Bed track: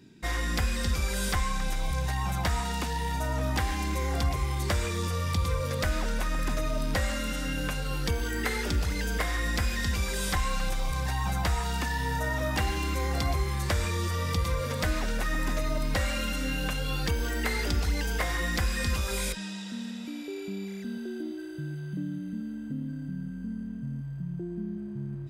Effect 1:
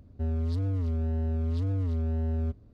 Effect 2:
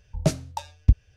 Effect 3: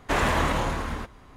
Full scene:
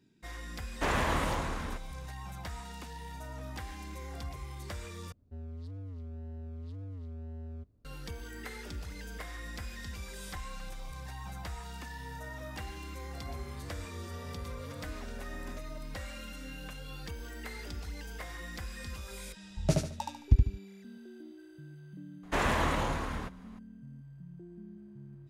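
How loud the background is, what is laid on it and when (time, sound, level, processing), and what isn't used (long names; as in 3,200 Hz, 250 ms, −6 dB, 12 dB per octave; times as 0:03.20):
bed track −13.5 dB
0:00.72: mix in 3 −6.5 dB
0:05.12: overwrite with 1 −14 dB
0:13.07: mix in 1 −2.5 dB + resonant band-pass 1,500 Hz, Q 0.67
0:19.43: mix in 2 −6 dB + repeating echo 73 ms, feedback 32%, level −3 dB
0:22.23: mix in 3 −5.5 dB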